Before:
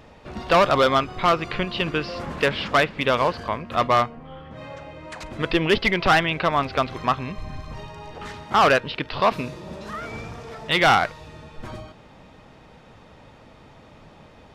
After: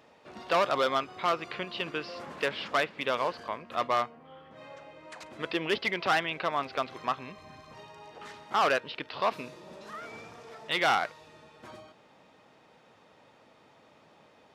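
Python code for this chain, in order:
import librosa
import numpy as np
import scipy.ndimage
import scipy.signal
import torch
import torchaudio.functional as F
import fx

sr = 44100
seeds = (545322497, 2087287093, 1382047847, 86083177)

y = scipy.signal.sosfilt(scipy.signal.butter(2, 120.0, 'highpass', fs=sr, output='sos'), x)
y = fx.bass_treble(y, sr, bass_db=-8, treble_db=1)
y = y * librosa.db_to_amplitude(-8.5)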